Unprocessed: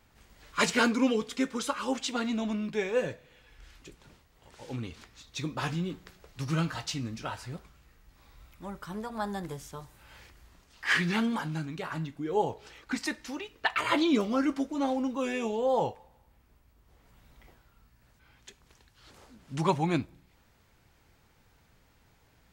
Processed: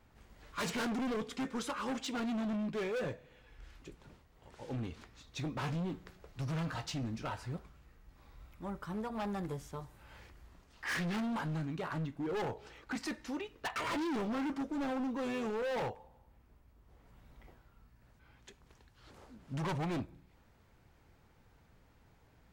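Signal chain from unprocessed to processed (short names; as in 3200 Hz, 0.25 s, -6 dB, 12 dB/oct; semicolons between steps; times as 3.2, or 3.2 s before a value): high shelf 2000 Hz -8.5 dB; overloaded stage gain 33.5 dB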